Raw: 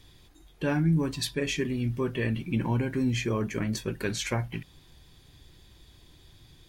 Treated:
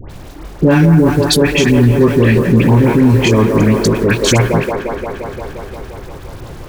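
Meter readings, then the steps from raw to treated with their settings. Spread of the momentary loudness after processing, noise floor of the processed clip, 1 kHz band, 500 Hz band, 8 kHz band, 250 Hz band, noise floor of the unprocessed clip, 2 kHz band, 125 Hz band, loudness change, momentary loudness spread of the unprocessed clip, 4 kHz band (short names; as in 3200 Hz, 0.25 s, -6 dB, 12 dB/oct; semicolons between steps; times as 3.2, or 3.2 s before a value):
18 LU, -32 dBFS, +19.0 dB, +20.0 dB, +16.0 dB, +18.0 dB, -57 dBFS, +16.5 dB, +18.0 dB, +18.0 dB, 6 LU, +16.5 dB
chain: Wiener smoothing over 41 samples; in parallel at -2.5 dB: compressor 6:1, threshold -40 dBFS, peak gain reduction 18 dB; on the sum: bit-crush 9-bit; dispersion highs, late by 98 ms, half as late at 1400 Hz; on a send: band-limited delay 0.175 s, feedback 78%, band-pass 720 Hz, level -4 dB; on the sum: maximiser +20.5 dB; gain -1 dB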